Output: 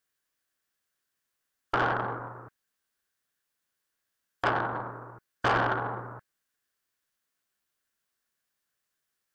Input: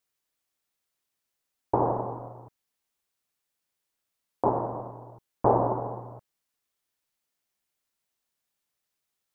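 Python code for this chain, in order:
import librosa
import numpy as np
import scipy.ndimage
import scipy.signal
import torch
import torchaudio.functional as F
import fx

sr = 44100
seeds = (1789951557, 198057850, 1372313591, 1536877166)

y = fx.peak_eq(x, sr, hz=1100.0, db=12.0, octaves=0.21)
y = 10.0 ** (-19.5 / 20.0) * np.tanh(y / 10.0 ** (-19.5 / 20.0))
y = fx.formant_shift(y, sr, semitones=6)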